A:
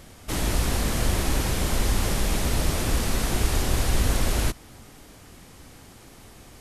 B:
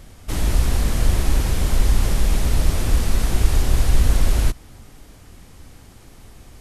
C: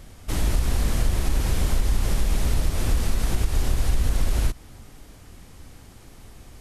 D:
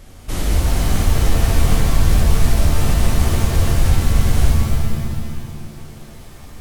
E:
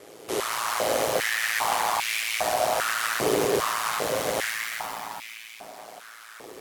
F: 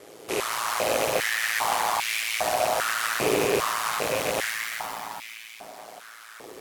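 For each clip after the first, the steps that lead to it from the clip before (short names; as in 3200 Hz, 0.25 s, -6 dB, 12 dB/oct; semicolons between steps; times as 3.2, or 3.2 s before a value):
low shelf 92 Hz +11 dB; gain -1 dB
compressor, threshold -14 dBFS, peak gain reduction 8 dB; gain -1.5 dB
shimmer reverb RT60 1.9 s, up +7 st, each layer -2 dB, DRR -0.5 dB; gain +1.5 dB
ring modulator 56 Hz; stepped high-pass 2.5 Hz 420–2300 Hz; gain +1 dB
rattling part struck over -37 dBFS, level -20 dBFS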